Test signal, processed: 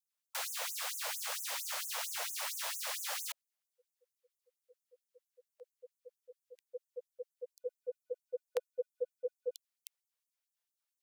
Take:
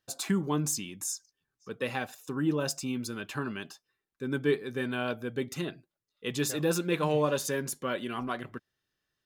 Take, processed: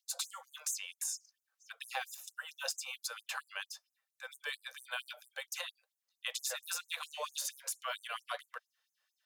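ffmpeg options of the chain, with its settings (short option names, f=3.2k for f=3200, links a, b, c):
-filter_complex "[0:a]acrossover=split=560|1500|3000[a][b][c][d];[a]acompressor=threshold=-38dB:ratio=4[e];[b]acompressor=threshold=-45dB:ratio=4[f];[c]acompressor=threshold=-49dB:ratio=4[g];[d]acompressor=threshold=-40dB:ratio=4[h];[e][f][g][h]amix=inputs=4:normalize=0,afftfilt=real='re*gte(b*sr/1024,460*pow(6200/460,0.5+0.5*sin(2*PI*4.4*pts/sr)))':imag='im*gte(b*sr/1024,460*pow(6200/460,0.5+0.5*sin(2*PI*4.4*pts/sr)))':win_size=1024:overlap=0.75,volume=3.5dB"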